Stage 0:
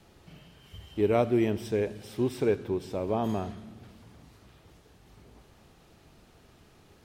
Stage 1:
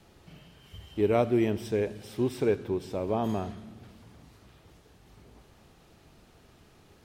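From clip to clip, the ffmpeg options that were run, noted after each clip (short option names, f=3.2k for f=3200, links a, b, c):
-af anull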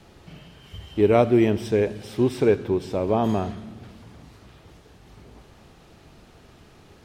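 -af "highshelf=f=10k:g=-8,volume=7dB"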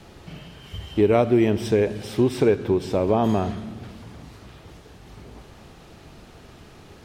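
-af "acompressor=threshold=-22dB:ratio=2,volume=4.5dB"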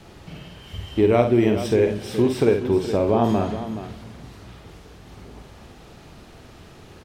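-af "aecho=1:1:51|423:0.473|0.266"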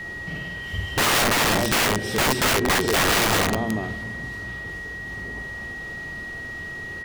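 -af "aeval=exprs='(mod(8.91*val(0)+1,2)-1)/8.91':c=same,aeval=exprs='val(0)+0.0158*sin(2*PI*1900*n/s)':c=same,volume=4dB"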